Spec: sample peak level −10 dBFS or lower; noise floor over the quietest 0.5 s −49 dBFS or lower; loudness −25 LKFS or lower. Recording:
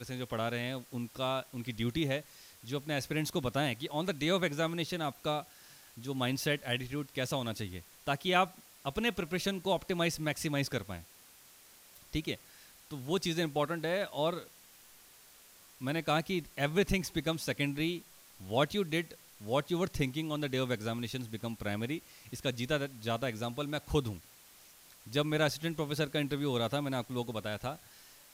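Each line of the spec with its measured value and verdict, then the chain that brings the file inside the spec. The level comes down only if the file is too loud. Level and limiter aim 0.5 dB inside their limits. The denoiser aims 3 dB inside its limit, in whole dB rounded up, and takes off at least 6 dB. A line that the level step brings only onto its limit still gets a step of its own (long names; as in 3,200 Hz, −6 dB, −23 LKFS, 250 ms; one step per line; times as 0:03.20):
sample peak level −13.5 dBFS: in spec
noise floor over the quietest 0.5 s −58 dBFS: in spec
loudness −34.5 LKFS: in spec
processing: no processing needed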